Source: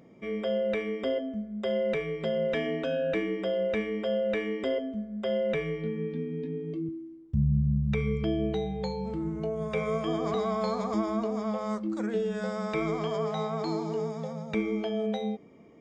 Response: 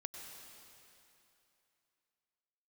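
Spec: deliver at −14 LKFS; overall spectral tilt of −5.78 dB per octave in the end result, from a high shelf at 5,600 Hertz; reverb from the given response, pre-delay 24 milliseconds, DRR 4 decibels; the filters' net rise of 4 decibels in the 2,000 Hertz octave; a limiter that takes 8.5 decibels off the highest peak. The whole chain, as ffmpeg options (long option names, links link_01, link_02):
-filter_complex "[0:a]equalizer=frequency=2000:width_type=o:gain=5.5,highshelf=frequency=5600:gain=-6.5,alimiter=level_in=0.5dB:limit=-24dB:level=0:latency=1,volume=-0.5dB,asplit=2[link_01][link_02];[1:a]atrim=start_sample=2205,adelay=24[link_03];[link_02][link_03]afir=irnorm=-1:irlink=0,volume=-1.5dB[link_04];[link_01][link_04]amix=inputs=2:normalize=0,volume=18dB"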